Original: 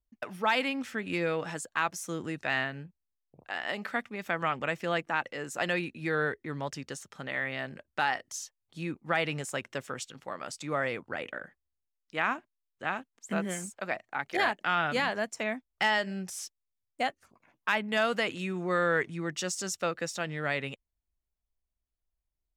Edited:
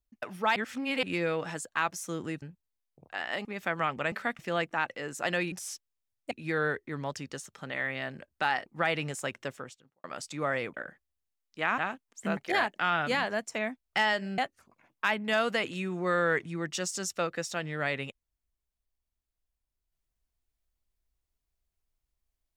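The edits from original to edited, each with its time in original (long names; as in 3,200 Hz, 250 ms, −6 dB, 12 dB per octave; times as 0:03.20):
0:00.56–0:01.03: reverse
0:02.42–0:02.78: remove
0:03.81–0:04.08: move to 0:04.75
0:08.23–0:08.96: remove
0:09.68–0:10.34: fade out and dull
0:11.04–0:11.30: remove
0:12.34–0:12.84: remove
0:13.43–0:14.22: remove
0:16.23–0:17.02: move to 0:05.88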